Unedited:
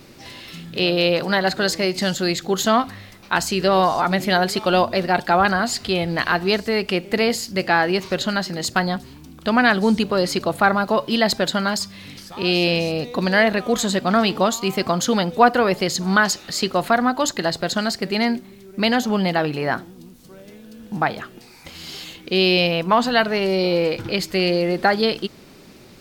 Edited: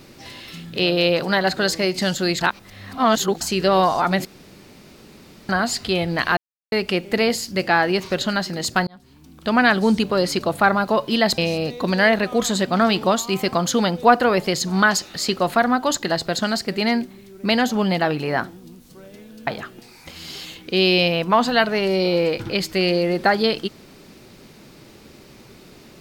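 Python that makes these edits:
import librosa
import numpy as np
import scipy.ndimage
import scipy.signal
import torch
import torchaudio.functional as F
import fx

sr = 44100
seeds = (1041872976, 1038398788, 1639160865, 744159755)

y = fx.edit(x, sr, fx.reverse_span(start_s=2.41, length_s=1.0),
    fx.room_tone_fill(start_s=4.25, length_s=1.24),
    fx.silence(start_s=6.37, length_s=0.35),
    fx.fade_in_span(start_s=8.87, length_s=0.71),
    fx.cut(start_s=11.38, length_s=1.34),
    fx.cut(start_s=20.81, length_s=0.25), tone=tone)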